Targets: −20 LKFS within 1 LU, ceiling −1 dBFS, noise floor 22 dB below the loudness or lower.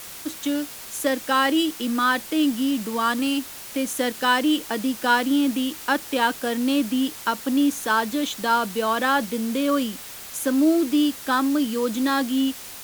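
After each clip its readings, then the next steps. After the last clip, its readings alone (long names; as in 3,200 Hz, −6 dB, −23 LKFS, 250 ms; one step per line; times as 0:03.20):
background noise floor −39 dBFS; target noise floor −45 dBFS; integrated loudness −23.0 LKFS; sample peak −7.0 dBFS; target loudness −20.0 LKFS
→ broadband denoise 6 dB, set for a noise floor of −39 dBFS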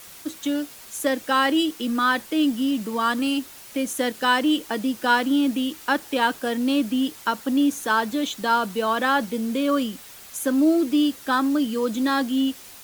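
background noise floor −44 dBFS; target noise floor −45 dBFS
→ broadband denoise 6 dB, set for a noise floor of −44 dBFS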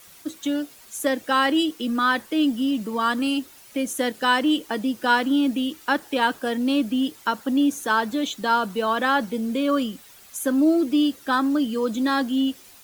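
background noise floor −49 dBFS; integrated loudness −23.0 LKFS; sample peak −7.0 dBFS; target loudness −20.0 LKFS
→ level +3 dB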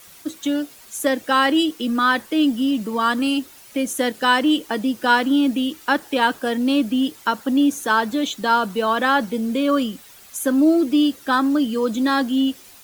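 integrated loudness −20.0 LKFS; sample peak −4.0 dBFS; background noise floor −46 dBFS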